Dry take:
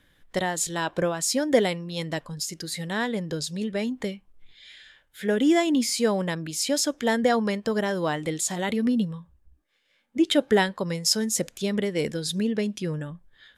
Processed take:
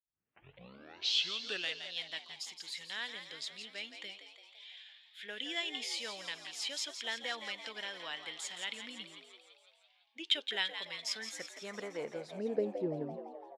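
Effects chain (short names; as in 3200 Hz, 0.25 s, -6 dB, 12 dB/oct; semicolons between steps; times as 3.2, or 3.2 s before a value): tape start at the beginning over 1.86 s; band-pass sweep 3000 Hz -> 280 Hz, 10.88–13.13; frequency-shifting echo 0.169 s, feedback 63%, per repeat +83 Hz, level -9 dB; gain -1.5 dB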